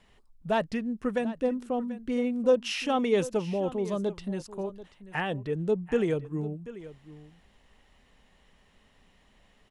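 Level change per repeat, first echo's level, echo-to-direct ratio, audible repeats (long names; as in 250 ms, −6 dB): repeats not evenly spaced, −16.0 dB, −16.0 dB, 1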